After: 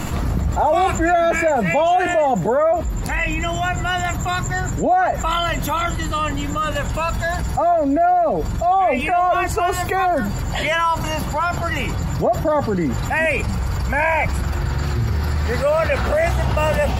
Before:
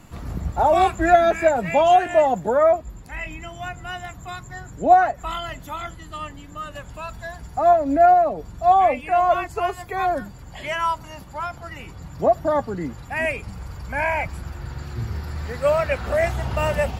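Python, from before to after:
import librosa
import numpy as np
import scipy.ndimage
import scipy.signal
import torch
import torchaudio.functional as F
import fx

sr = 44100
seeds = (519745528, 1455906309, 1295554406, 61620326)

y = fx.env_flatten(x, sr, amount_pct=70)
y = y * 10.0 ** (-5.0 / 20.0)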